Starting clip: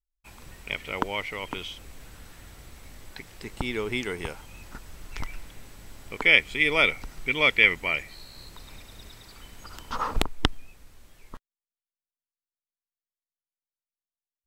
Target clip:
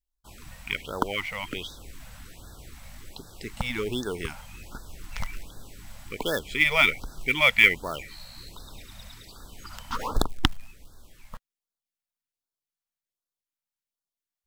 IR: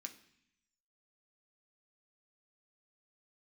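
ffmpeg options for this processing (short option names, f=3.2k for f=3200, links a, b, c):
-filter_complex "[0:a]asplit=2[a][b];[b]acrusher=bits=3:mode=log:mix=0:aa=0.000001,volume=-3.5dB[c];[a][c]amix=inputs=2:normalize=0,afftfilt=real='re*(1-between(b*sr/1024,330*pow(2500/330,0.5+0.5*sin(2*PI*1.3*pts/sr))/1.41,330*pow(2500/330,0.5+0.5*sin(2*PI*1.3*pts/sr))*1.41))':imag='im*(1-between(b*sr/1024,330*pow(2500/330,0.5+0.5*sin(2*PI*1.3*pts/sr))/1.41,330*pow(2500/330,0.5+0.5*sin(2*PI*1.3*pts/sr))*1.41))':win_size=1024:overlap=0.75,volume=-3dB"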